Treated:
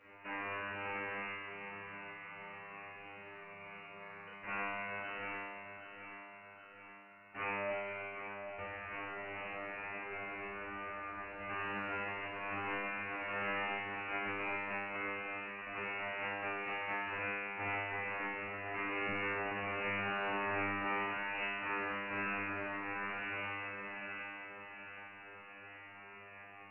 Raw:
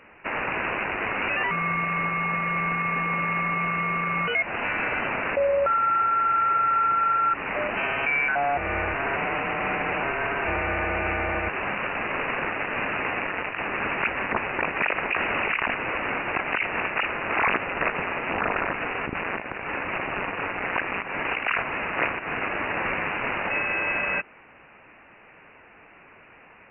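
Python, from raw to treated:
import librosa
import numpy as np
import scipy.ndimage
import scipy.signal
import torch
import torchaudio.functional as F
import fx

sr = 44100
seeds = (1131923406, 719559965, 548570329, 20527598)

y = fx.over_compress(x, sr, threshold_db=-31.0, ratio=-0.5)
y = fx.comb_fb(y, sr, f0_hz=100.0, decay_s=1.4, harmonics='all', damping=0.0, mix_pct=100)
y = fx.echo_feedback(y, sr, ms=773, feedback_pct=56, wet_db=-9.0)
y = y * 10.0 ** (6.0 / 20.0)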